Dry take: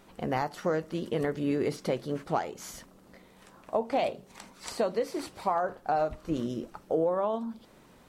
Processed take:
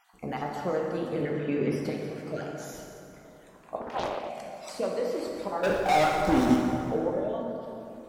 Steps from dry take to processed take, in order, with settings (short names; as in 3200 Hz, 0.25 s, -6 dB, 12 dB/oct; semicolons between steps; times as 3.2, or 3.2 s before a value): random spectral dropouts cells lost 36%; 1.21–1.72 speaker cabinet 100–6000 Hz, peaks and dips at 140 Hz +5 dB, 220 Hz +10 dB, 990 Hz +4 dB, 2400 Hz +9 dB, 4300 Hz -8 dB; 5.63–6.56 sample leveller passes 5; plate-style reverb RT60 3 s, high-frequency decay 0.55×, DRR -1.5 dB; 3.81–4.3 Doppler distortion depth 0.83 ms; gain -3 dB